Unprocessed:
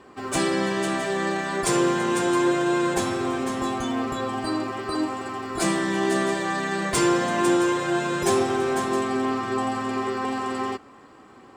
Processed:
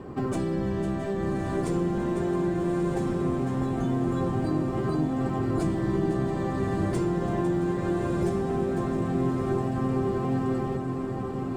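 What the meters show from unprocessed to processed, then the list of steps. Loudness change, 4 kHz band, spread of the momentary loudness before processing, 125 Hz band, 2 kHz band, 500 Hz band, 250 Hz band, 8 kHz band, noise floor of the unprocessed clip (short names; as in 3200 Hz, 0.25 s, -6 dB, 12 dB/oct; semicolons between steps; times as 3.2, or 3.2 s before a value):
-3.0 dB, -16.0 dB, 6 LU, +7.5 dB, -13.0 dB, -3.5 dB, -1.0 dB, -17.0 dB, -49 dBFS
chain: octaver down 1 oct, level -2 dB; in parallel at -6 dB: short-mantissa float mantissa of 2-bit; on the sum: compressor 16:1, threshold -30 dBFS, peak gain reduction 18 dB; tilt shelf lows +9 dB, about 870 Hz; on a send: diffused feedback echo 1.212 s, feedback 54%, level -5 dB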